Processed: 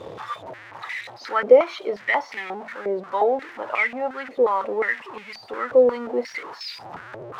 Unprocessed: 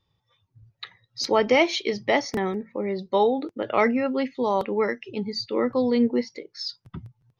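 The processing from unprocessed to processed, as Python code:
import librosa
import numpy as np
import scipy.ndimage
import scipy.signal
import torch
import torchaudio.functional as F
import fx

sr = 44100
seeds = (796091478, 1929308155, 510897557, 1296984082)

y = x + 0.5 * 10.0 ** (-28.0 / 20.0) * np.sign(x)
y = fx.rider(y, sr, range_db=4, speed_s=2.0)
y = fx.filter_held_bandpass(y, sr, hz=5.6, low_hz=510.0, high_hz=2300.0)
y = y * 10.0 ** (8.5 / 20.0)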